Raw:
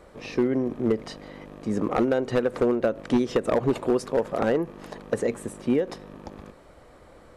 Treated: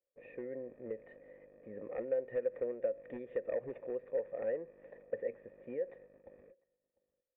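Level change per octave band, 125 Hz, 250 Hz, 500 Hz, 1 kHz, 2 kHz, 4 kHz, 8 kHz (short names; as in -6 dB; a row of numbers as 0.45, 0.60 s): -25.5 dB, -24.5 dB, -12.0 dB, -24.5 dB, -17.5 dB, under -35 dB, under -35 dB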